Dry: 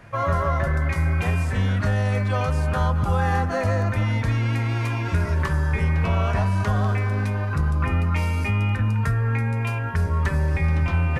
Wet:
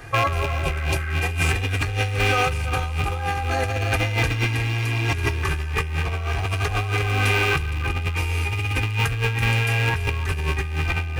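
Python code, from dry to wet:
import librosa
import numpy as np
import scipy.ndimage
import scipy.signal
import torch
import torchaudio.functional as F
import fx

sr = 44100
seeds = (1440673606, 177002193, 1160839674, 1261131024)

p1 = fx.rattle_buzz(x, sr, strikes_db=-31.0, level_db=-19.0)
p2 = fx.high_shelf(p1, sr, hz=5300.0, db=9.0)
p3 = p2 + 0.84 * np.pad(p2, (int(2.5 * sr / 1000.0), 0))[:len(p2)]
p4 = p3 + fx.echo_single(p3, sr, ms=332, db=-5.5, dry=0)
p5 = fx.over_compress(p4, sr, threshold_db=-23.0, ratio=-1.0)
y = fx.spec_repair(p5, sr, seeds[0], start_s=0.4, length_s=0.76, low_hz=1100.0, high_hz=2300.0, source='both')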